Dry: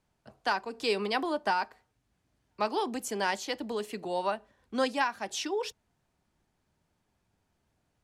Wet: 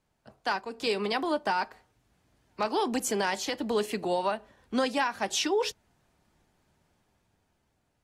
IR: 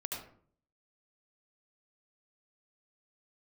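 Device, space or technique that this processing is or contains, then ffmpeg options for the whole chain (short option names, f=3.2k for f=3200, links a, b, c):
low-bitrate web radio: -af "dynaudnorm=f=370:g=7:m=6dB,alimiter=limit=-18dB:level=0:latency=1:release=160" -ar 48000 -c:a aac -b:a 48k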